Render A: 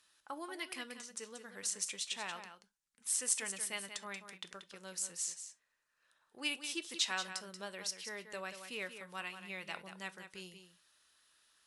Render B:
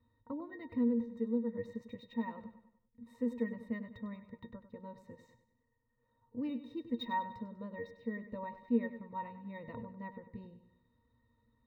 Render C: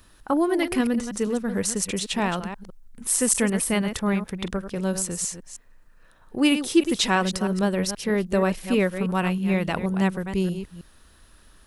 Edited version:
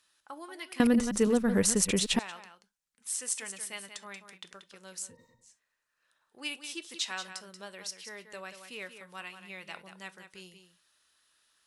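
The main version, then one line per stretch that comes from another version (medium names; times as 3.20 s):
A
0.80–2.19 s: from C
5.09–5.49 s: from B, crossfade 0.16 s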